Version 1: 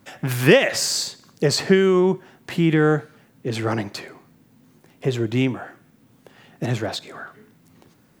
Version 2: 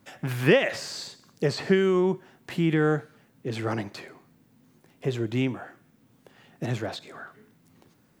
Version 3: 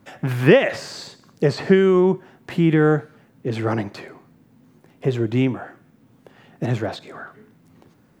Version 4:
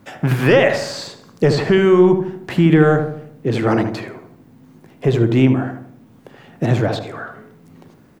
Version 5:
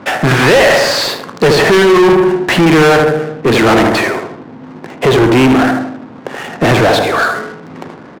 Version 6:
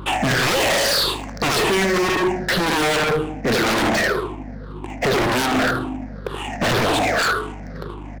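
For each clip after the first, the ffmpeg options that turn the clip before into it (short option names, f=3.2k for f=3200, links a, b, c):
-filter_complex "[0:a]acrossover=split=3800[a][b];[b]acompressor=threshold=-36dB:ratio=4:attack=1:release=60[c];[a][c]amix=inputs=2:normalize=0,volume=-5.5dB"
-af "highshelf=f=2.5k:g=-8,volume=7dB"
-filter_complex "[0:a]apsyclip=12dB,asplit=2[a][b];[b]adelay=77,lowpass=f=1.1k:p=1,volume=-5.5dB,asplit=2[c][d];[d]adelay=77,lowpass=f=1.1k:p=1,volume=0.52,asplit=2[e][f];[f]adelay=77,lowpass=f=1.1k:p=1,volume=0.52,asplit=2[g][h];[h]adelay=77,lowpass=f=1.1k:p=1,volume=0.52,asplit=2[i][j];[j]adelay=77,lowpass=f=1.1k:p=1,volume=0.52,asplit=2[k][l];[l]adelay=77,lowpass=f=1.1k:p=1,volume=0.52,asplit=2[m][n];[n]adelay=77,lowpass=f=1.1k:p=1,volume=0.52[o];[c][e][g][i][k][m][o]amix=inputs=7:normalize=0[p];[a][p]amix=inputs=2:normalize=0,volume=-6.5dB"
-filter_complex "[0:a]asplit=2[a][b];[b]adelay=135,lowpass=f=3.6k:p=1,volume=-18dB,asplit=2[c][d];[d]adelay=135,lowpass=f=3.6k:p=1,volume=0.33,asplit=2[e][f];[f]adelay=135,lowpass=f=3.6k:p=1,volume=0.33[g];[a][c][e][g]amix=inputs=4:normalize=0,asplit=2[h][i];[i]highpass=f=720:p=1,volume=30dB,asoftclip=type=tanh:threshold=-1dB[j];[h][j]amix=inputs=2:normalize=0,lowpass=f=3.2k:p=1,volume=-6dB,adynamicsmooth=sensitivity=5.5:basefreq=640"
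-af "afftfilt=real='re*pow(10,16/40*sin(2*PI*(0.63*log(max(b,1)*sr/1024/100)/log(2)-(-1.9)*(pts-256)/sr)))':imag='im*pow(10,16/40*sin(2*PI*(0.63*log(max(b,1)*sr/1024/100)/log(2)-(-1.9)*(pts-256)/sr)))':win_size=1024:overlap=0.75,aeval=exprs='val(0)+0.0501*(sin(2*PI*50*n/s)+sin(2*PI*2*50*n/s)/2+sin(2*PI*3*50*n/s)/3+sin(2*PI*4*50*n/s)/4+sin(2*PI*5*50*n/s)/5)':c=same,aeval=exprs='0.473*(abs(mod(val(0)/0.473+3,4)-2)-1)':c=same,volume=-7.5dB"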